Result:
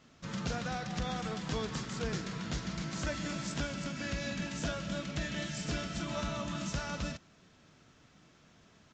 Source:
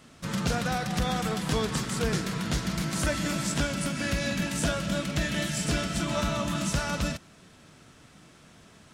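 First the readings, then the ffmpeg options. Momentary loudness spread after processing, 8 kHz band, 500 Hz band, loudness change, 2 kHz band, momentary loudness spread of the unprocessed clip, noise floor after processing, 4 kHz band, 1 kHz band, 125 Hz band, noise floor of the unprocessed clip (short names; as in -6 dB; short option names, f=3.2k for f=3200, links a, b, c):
2 LU, -10.5 dB, -8.0 dB, -8.0 dB, -8.0 dB, 2 LU, -63 dBFS, -8.0 dB, -8.0 dB, -8.0 dB, -55 dBFS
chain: -af "aresample=16000,aresample=44100,volume=-8dB"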